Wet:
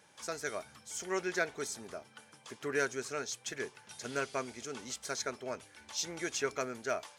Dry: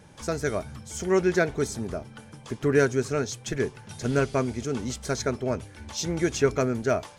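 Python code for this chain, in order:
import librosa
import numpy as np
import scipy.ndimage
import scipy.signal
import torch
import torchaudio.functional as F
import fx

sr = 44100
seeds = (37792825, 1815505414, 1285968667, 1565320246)

y = fx.highpass(x, sr, hz=1100.0, slope=6)
y = F.gain(torch.from_numpy(y), -4.0).numpy()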